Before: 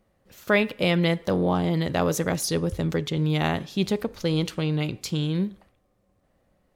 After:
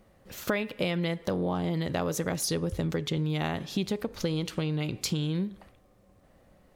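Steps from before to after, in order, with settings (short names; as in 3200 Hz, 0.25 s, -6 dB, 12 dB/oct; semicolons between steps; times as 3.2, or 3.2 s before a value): compressor 6:1, threshold -34 dBFS, peak gain reduction 17.5 dB; gain +7 dB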